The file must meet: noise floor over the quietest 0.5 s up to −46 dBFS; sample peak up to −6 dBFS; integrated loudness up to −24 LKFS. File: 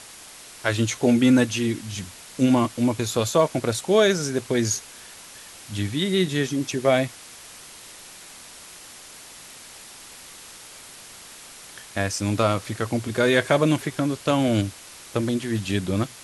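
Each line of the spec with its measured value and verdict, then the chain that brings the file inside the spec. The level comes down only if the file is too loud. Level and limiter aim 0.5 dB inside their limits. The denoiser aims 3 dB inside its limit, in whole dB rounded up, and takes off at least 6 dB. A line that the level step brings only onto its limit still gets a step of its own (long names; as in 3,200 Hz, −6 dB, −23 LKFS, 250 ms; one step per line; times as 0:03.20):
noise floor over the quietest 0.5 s −44 dBFS: out of spec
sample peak −5.0 dBFS: out of spec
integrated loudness −23.0 LKFS: out of spec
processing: broadband denoise 6 dB, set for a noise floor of −44 dBFS
level −1.5 dB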